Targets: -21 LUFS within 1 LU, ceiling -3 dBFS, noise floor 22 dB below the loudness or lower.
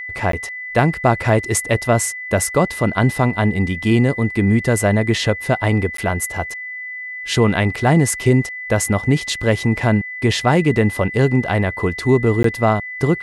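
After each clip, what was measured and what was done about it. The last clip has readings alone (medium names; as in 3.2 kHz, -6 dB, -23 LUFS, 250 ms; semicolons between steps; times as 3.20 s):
dropouts 3; longest dropout 13 ms; steady tone 2 kHz; tone level -27 dBFS; loudness -18.0 LUFS; peak level -1.5 dBFS; loudness target -21.0 LUFS
-> interpolate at 0.32/5.97/12.43 s, 13 ms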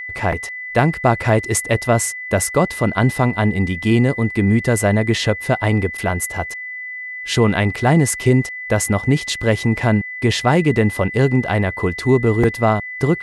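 dropouts 0; steady tone 2 kHz; tone level -27 dBFS
-> band-stop 2 kHz, Q 30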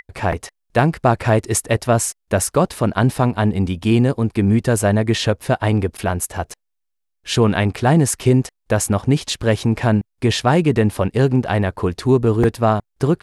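steady tone not found; loudness -18.0 LUFS; peak level -2.0 dBFS; loudness target -21.0 LUFS
-> trim -3 dB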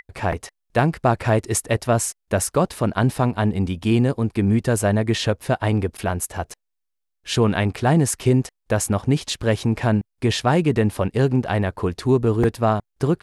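loudness -21.0 LUFS; peak level -5.0 dBFS; noise floor -77 dBFS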